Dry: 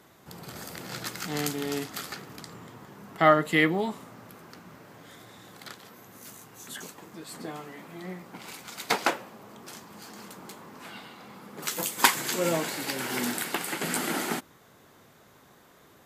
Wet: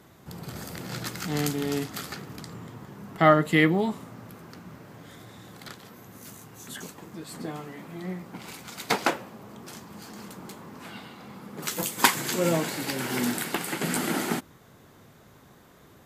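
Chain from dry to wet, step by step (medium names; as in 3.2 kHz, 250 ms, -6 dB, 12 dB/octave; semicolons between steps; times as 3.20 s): bass shelf 230 Hz +9.5 dB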